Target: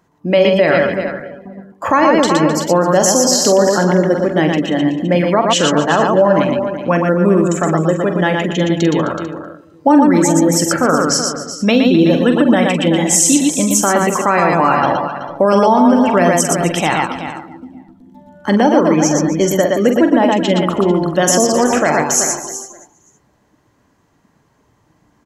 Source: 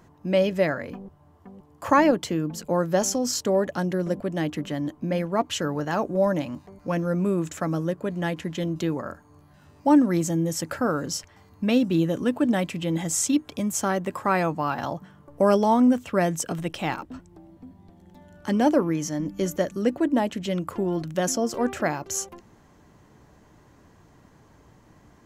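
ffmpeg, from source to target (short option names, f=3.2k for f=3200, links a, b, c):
-filter_complex "[0:a]lowshelf=f=220:g=-9,asplit=2[a][b];[b]aecho=0:1:522:0.106[c];[a][c]amix=inputs=2:normalize=0,afftdn=nr=17:nf=-42,asplit=2[d][e];[e]aecho=0:1:45|117|118|260|375|444:0.355|0.119|0.631|0.168|0.251|0.141[f];[d][f]amix=inputs=2:normalize=0,alimiter=level_in=15dB:limit=-1dB:release=50:level=0:latency=1,volume=-1dB"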